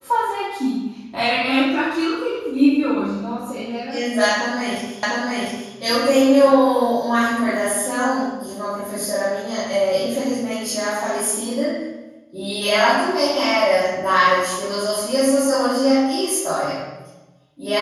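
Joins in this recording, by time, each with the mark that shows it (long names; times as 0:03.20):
0:05.03: the same again, the last 0.7 s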